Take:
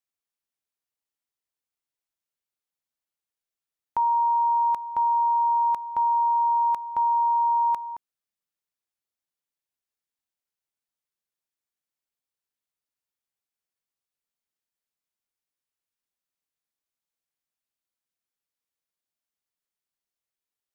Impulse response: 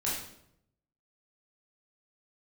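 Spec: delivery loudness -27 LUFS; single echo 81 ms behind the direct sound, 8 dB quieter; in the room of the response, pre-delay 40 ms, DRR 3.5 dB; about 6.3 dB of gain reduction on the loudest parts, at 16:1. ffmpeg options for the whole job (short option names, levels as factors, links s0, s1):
-filter_complex "[0:a]acompressor=threshold=0.0501:ratio=16,aecho=1:1:81:0.398,asplit=2[s0][s1];[1:a]atrim=start_sample=2205,adelay=40[s2];[s1][s2]afir=irnorm=-1:irlink=0,volume=0.335[s3];[s0][s3]amix=inputs=2:normalize=0,volume=1.12"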